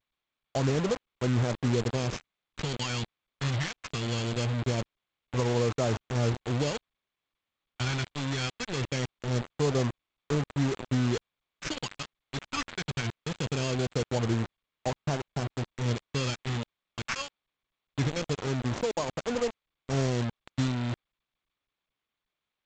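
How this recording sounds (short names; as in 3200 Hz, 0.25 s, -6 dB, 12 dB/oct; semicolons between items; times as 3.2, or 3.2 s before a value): aliases and images of a low sample rate 3800 Hz, jitter 0%; phasing stages 2, 0.22 Hz, lowest notch 480–2700 Hz; a quantiser's noise floor 6-bit, dither none; G.722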